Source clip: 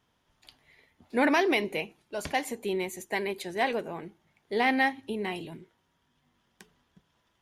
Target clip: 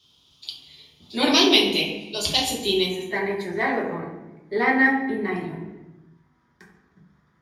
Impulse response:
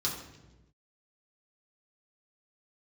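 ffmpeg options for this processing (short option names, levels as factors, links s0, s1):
-filter_complex "[0:a]asetnsamples=n=441:p=0,asendcmd='2.88 highshelf g -6.5',highshelf=f=2400:t=q:w=3:g=9.5[s0];[1:a]atrim=start_sample=2205,asetrate=42336,aresample=44100[s1];[s0][s1]afir=irnorm=-1:irlink=0,volume=0.841"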